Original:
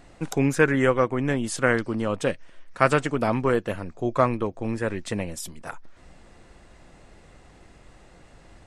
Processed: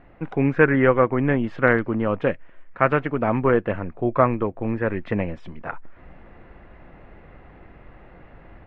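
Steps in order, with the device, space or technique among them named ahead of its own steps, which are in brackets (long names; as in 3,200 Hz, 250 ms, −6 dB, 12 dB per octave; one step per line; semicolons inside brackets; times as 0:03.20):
action camera in a waterproof case (low-pass filter 2,400 Hz 24 dB per octave; automatic gain control gain up to 5 dB; AAC 128 kbit/s 44,100 Hz)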